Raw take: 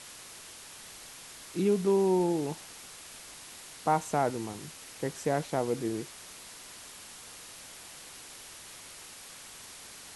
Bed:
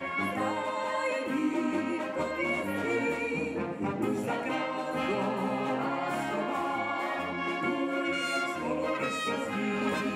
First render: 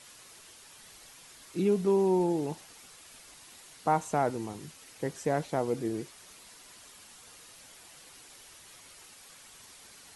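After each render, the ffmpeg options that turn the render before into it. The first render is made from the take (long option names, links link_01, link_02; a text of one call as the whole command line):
ffmpeg -i in.wav -af "afftdn=noise_reduction=7:noise_floor=-48" out.wav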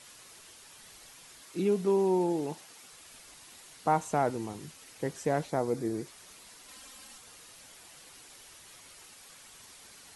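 ffmpeg -i in.wav -filter_complex "[0:a]asettb=1/sr,asplit=3[link_01][link_02][link_03];[link_01]atrim=end=1.404[link_04];[link_02]atrim=start=1.4:end=2.93,asetpts=PTS-STARTPTS,afade=type=in:duration=0.004:curve=qsin,afade=type=out:start_time=1.526:duration=0.004:curve=qsin,highpass=frequency=170:poles=1[link_05];[link_03]atrim=start=2.926[link_06];[link_04][link_05]acrossfade=duration=0.004:curve1=hsin:curve2=qsin[link_07];[link_07][link_06]acrossfade=duration=0.004:curve1=qsin:curve2=hsin,asettb=1/sr,asplit=3[link_08][link_09][link_10];[link_08]atrim=end=5.494[link_11];[link_09]atrim=start=5.49:end=6.07,asetpts=PTS-STARTPTS,afade=type=in:duration=0.004:curve=qsin,afade=type=out:start_time=0.576:duration=0.004:curve=qsin,equalizer=frequency=2900:width=4:gain=-10[link_12];[link_10]atrim=start=6.066[link_13];[link_11][link_12]acrossfade=duration=0.004:curve1=hsin:curve2=qsin[link_14];[link_14][link_13]acrossfade=duration=0.004:curve1=qsin:curve2=hsin,asettb=1/sr,asplit=3[link_15][link_16][link_17];[link_15]atrim=end=6.684[link_18];[link_16]atrim=start=6.68:end=7.18,asetpts=PTS-STARTPTS,afade=type=in:duration=0.004:curve=qsin,afade=type=out:start_time=0.496:duration=0.004:curve=qsin,aecho=1:1:3.8:0.87,atrim=end_sample=22050[link_19];[link_17]atrim=start=7.176[link_20];[link_18][link_19]acrossfade=duration=0.004:curve1=hsin:curve2=qsin[link_21];[link_21][link_20]acrossfade=duration=0.004:curve1=qsin:curve2=hsin" out.wav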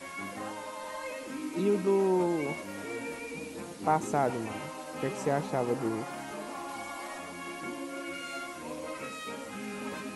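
ffmpeg -i in.wav -i bed.wav -filter_complex "[1:a]volume=-8.5dB[link_01];[0:a][link_01]amix=inputs=2:normalize=0" out.wav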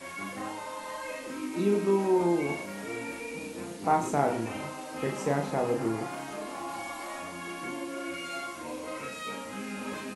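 ffmpeg -i in.wav -filter_complex "[0:a]asplit=2[link_01][link_02];[link_02]adelay=35,volume=-4dB[link_03];[link_01][link_03]amix=inputs=2:normalize=0,aecho=1:1:96:0.188" out.wav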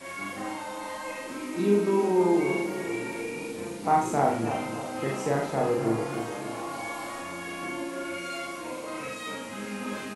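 ffmpeg -i in.wav -filter_complex "[0:a]asplit=2[link_01][link_02];[link_02]adelay=44,volume=-3dB[link_03];[link_01][link_03]amix=inputs=2:normalize=0,asplit=2[link_04][link_05];[link_05]adelay=296,lowpass=frequency=2000:poles=1,volume=-9dB,asplit=2[link_06][link_07];[link_07]adelay=296,lowpass=frequency=2000:poles=1,volume=0.54,asplit=2[link_08][link_09];[link_09]adelay=296,lowpass=frequency=2000:poles=1,volume=0.54,asplit=2[link_10][link_11];[link_11]adelay=296,lowpass=frequency=2000:poles=1,volume=0.54,asplit=2[link_12][link_13];[link_13]adelay=296,lowpass=frequency=2000:poles=1,volume=0.54,asplit=2[link_14][link_15];[link_15]adelay=296,lowpass=frequency=2000:poles=1,volume=0.54[link_16];[link_06][link_08][link_10][link_12][link_14][link_16]amix=inputs=6:normalize=0[link_17];[link_04][link_17]amix=inputs=2:normalize=0" out.wav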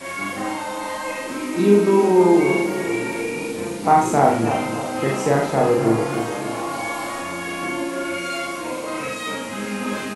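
ffmpeg -i in.wav -af "volume=8.5dB,alimiter=limit=-3dB:level=0:latency=1" out.wav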